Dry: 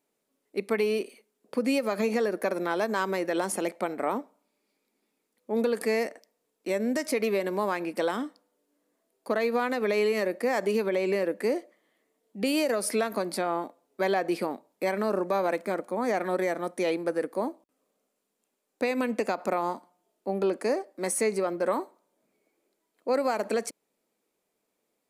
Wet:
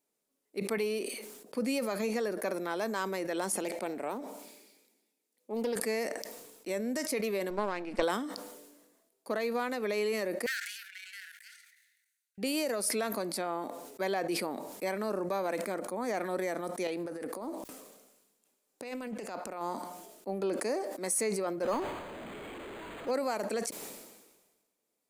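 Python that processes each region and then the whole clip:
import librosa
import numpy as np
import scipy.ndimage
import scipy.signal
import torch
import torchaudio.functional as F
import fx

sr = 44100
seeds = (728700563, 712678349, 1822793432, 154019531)

y = fx.chain(x, sr, fx.highpass(hz=210.0, slope=12),
    fx.peak_eq(hz=1200.0, db=-7.0, octaves=0.69),
    fx.doppler_dist(depth_ms=0.2), at=(3.64, 5.76))
y = fx.chain(y, sr, fx.halfwave_gain(db=-7.0),
    fx.transient(attack_db=10, sustain_db=1),
    fx.air_absorb(metres=95.0), at=(7.5, 8.03))
y = fx.chain(y, sr, fx.lower_of_two(delay_ms=0.47),
    fx.cheby1_highpass(hz=1400.0, order=10),
    fx.level_steps(step_db=10), at=(10.46, 12.38))
y = fx.chain(y, sr, fx.over_compress(threshold_db=-33.0, ratio=-1.0),
    fx.doppler_dist(depth_ms=0.17), at=(16.87, 19.61))
y = fx.chain(y, sr, fx.zero_step(step_db=-30.5),
    fx.resample_linear(factor=8), at=(21.63, 23.11))
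y = fx.bass_treble(y, sr, bass_db=0, treble_db=6)
y = fx.sustainer(y, sr, db_per_s=45.0)
y = y * librosa.db_to_amplitude(-6.5)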